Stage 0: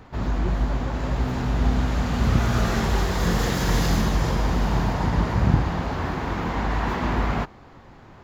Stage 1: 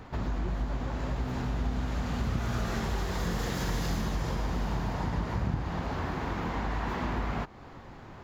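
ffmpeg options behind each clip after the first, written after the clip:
-af "acompressor=threshold=0.0251:ratio=2.5"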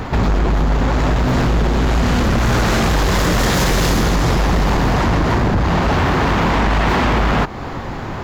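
-af "aeval=exprs='0.141*sin(PI/2*3.98*val(0)/0.141)':c=same,volume=1.88"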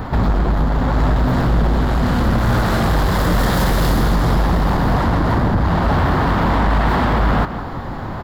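-filter_complex "[0:a]equalizer=f=400:t=o:w=0.67:g=-4,equalizer=f=2500:t=o:w=0.67:g=-9,equalizer=f=6300:t=o:w=0.67:g=-11,asplit=2[s0][s1];[s1]adelay=169.1,volume=0.282,highshelf=f=4000:g=-3.8[s2];[s0][s2]amix=inputs=2:normalize=0"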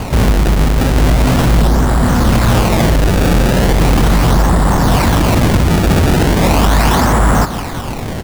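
-af "acrusher=samples=24:mix=1:aa=0.000001:lfo=1:lforange=38.4:lforate=0.38,volume=1.78"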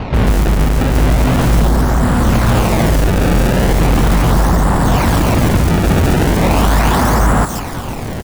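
-filter_complex "[0:a]acrossover=split=4300[s0][s1];[s1]adelay=140[s2];[s0][s2]amix=inputs=2:normalize=0,volume=0.891"

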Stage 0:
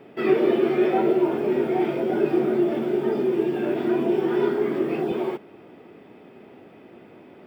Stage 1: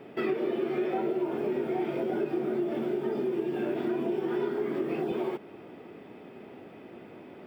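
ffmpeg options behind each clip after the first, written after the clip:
-af "acompressor=threshold=0.0398:ratio=4"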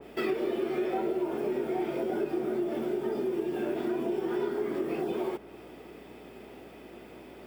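-af "bass=f=250:g=-4,treble=f=4000:g=13,aeval=exprs='val(0)+0.000891*(sin(2*PI*60*n/s)+sin(2*PI*2*60*n/s)/2+sin(2*PI*3*60*n/s)/3+sin(2*PI*4*60*n/s)/4+sin(2*PI*5*60*n/s)/5)':c=same,adynamicequalizer=threshold=0.00282:dfrequency=2200:dqfactor=0.7:tfrequency=2200:tqfactor=0.7:attack=5:release=100:ratio=0.375:range=2.5:mode=cutabove:tftype=highshelf"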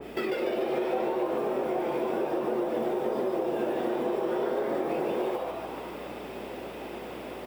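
-filter_complex "[0:a]acompressor=threshold=0.0126:ratio=2.5,asplit=9[s0][s1][s2][s3][s4][s5][s6][s7][s8];[s1]adelay=146,afreqshift=140,volume=0.708[s9];[s2]adelay=292,afreqshift=280,volume=0.398[s10];[s3]adelay=438,afreqshift=420,volume=0.221[s11];[s4]adelay=584,afreqshift=560,volume=0.124[s12];[s5]adelay=730,afreqshift=700,volume=0.07[s13];[s6]adelay=876,afreqshift=840,volume=0.0389[s14];[s7]adelay=1022,afreqshift=980,volume=0.0219[s15];[s8]adelay=1168,afreqshift=1120,volume=0.0122[s16];[s0][s9][s10][s11][s12][s13][s14][s15][s16]amix=inputs=9:normalize=0,volume=2.11"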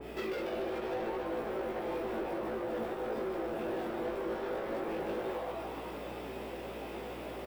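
-filter_complex "[0:a]asoftclip=type=tanh:threshold=0.0299,aeval=exprs='val(0)+0.000891*(sin(2*PI*60*n/s)+sin(2*PI*2*60*n/s)/2+sin(2*PI*3*60*n/s)/3+sin(2*PI*4*60*n/s)/4+sin(2*PI*5*60*n/s)/5)':c=same,asplit=2[s0][s1];[s1]adelay=18,volume=0.631[s2];[s0][s2]amix=inputs=2:normalize=0,volume=0.668"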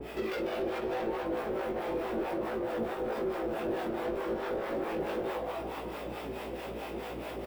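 -filter_complex "[0:a]acrossover=split=580[s0][s1];[s0]aeval=exprs='val(0)*(1-0.7/2+0.7/2*cos(2*PI*4.6*n/s))':c=same[s2];[s1]aeval=exprs='val(0)*(1-0.7/2-0.7/2*cos(2*PI*4.6*n/s))':c=same[s3];[s2][s3]amix=inputs=2:normalize=0,volume=2"

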